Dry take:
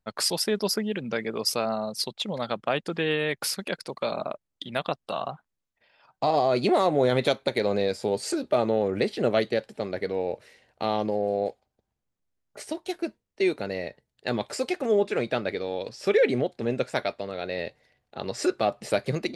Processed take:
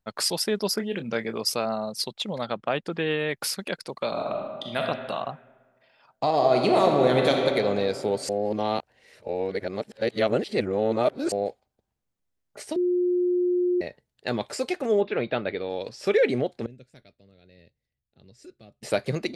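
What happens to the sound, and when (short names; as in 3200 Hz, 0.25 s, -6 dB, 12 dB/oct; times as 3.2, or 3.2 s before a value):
0.75–1.41 doubler 26 ms -10 dB
2.45–3.34 high shelf 5800 Hz -9 dB
4.09–4.79 reverb throw, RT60 1.6 s, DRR 0 dB
6.31–7.44 reverb throw, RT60 2.7 s, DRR 1 dB
8.29–11.32 reverse
12.76–13.81 bleep 357 Hz -20 dBFS
15.01–15.7 steep low-pass 4000 Hz
16.66–18.83 passive tone stack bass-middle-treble 10-0-1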